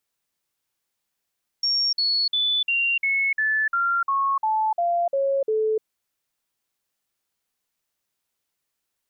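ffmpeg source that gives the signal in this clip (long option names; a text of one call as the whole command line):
ffmpeg -f lavfi -i "aevalsrc='0.112*clip(min(mod(t,0.35),0.3-mod(t,0.35))/0.005,0,1)*sin(2*PI*5530*pow(2,-floor(t/0.35)/3)*mod(t,0.35))':duration=4.2:sample_rate=44100" out.wav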